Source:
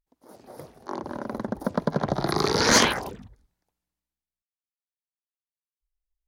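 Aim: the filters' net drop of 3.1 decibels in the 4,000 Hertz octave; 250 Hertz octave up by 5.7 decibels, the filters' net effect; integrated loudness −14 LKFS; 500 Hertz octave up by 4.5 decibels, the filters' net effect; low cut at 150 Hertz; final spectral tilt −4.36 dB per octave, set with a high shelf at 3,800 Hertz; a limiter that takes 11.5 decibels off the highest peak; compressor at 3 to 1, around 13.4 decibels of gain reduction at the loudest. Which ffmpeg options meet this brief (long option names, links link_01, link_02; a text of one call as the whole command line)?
ffmpeg -i in.wav -af "highpass=150,equalizer=frequency=250:width_type=o:gain=7,equalizer=frequency=500:width_type=o:gain=3.5,highshelf=frequency=3800:gain=5,equalizer=frequency=4000:width_type=o:gain=-7.5,acompressor=threshold=-31dB:ratio=3,volume=25.5dB,alimiter=limit=-2dB:level=0:latency=1" out.wav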